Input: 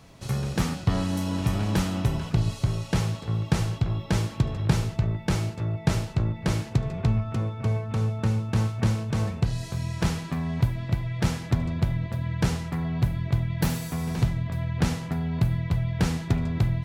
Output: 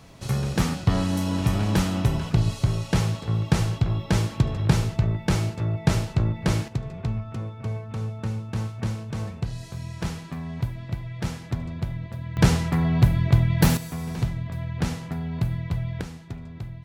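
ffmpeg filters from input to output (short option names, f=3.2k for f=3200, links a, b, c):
-af "asetnsamples=n=441:p=0,asendcmd='6.68 volume volume -4.5dB;12.37 volume volume 6.5dB;13.77 volume volume -2dB;16.01 volume volume -12dB',volume=2.5dB"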